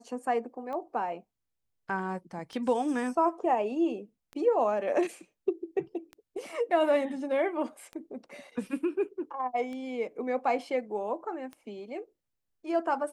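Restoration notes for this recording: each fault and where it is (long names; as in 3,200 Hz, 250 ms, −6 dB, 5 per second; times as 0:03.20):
scratch tick 33 1/3 rpm −28 dBFS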